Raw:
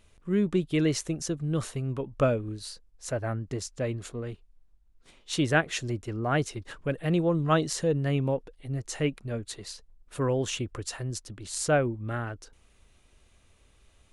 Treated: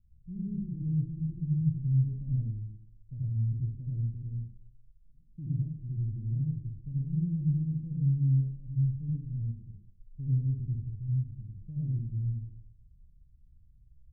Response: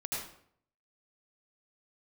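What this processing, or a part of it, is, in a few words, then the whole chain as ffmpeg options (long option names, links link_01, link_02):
club heard from the street: -filter_complex "[0:a]alimiter=limit=-20.5dB:level=0:latency=1:release=94,lowpass=frequency=160:width=0.5412,lowpass=frequency=160:width=1.3066[link_01];[1:a]atrim=start_sample=2205[link_02];[link_01][link_02]afir=irnorm=-1:irlink=0"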